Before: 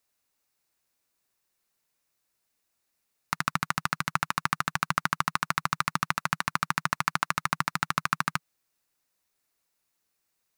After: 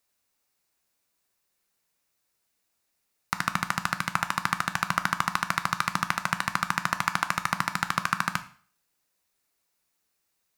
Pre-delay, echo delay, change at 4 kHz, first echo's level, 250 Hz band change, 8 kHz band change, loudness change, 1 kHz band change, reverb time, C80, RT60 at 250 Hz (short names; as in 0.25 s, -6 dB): 5 ms, none, +1.5 dB, none, +2.0 dB, +1.5 dB, +1.5 dB, +1.5 dB, 0.45 s, 18.5 dB, 0.45 s